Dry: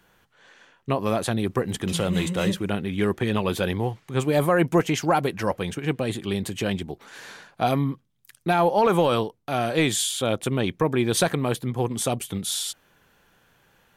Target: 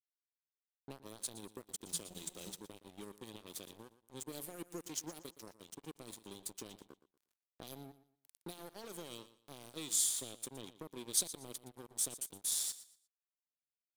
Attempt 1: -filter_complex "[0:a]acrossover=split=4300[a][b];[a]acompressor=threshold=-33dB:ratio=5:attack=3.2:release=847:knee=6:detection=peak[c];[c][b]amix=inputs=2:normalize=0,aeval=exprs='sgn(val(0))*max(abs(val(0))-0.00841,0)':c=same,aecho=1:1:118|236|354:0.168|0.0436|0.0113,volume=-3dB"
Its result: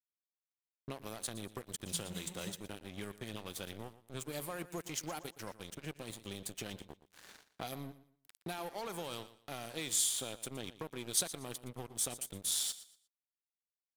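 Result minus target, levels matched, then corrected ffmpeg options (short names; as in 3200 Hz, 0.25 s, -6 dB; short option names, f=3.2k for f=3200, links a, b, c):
250 Hz band +4.0 dB
-filter_complex "[0:a]acrossover=split=4300[a][b];[a]acompressor=threshold=-33dB:ratio=5:attack=3.2:release=847:knee=6:detection=peak,bandpass=f=320:t=q:w=1.4:csg=0[c];[c][b]amix=inputs=2:normalize=0,aeval=exprs='sgn(val(0))*max(abs(val(0))-0.00841,0)':c=same,aecho=1:1:118|236|354:0.168|0.0436|0.0113,volume=-3dB"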